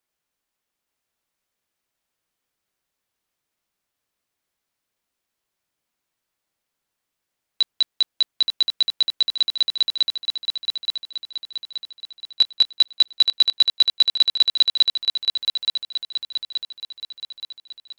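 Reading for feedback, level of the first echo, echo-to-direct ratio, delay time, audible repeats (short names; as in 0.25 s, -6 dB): 50%, -5.0 dB, -4.0 dB, 0.875 s, 5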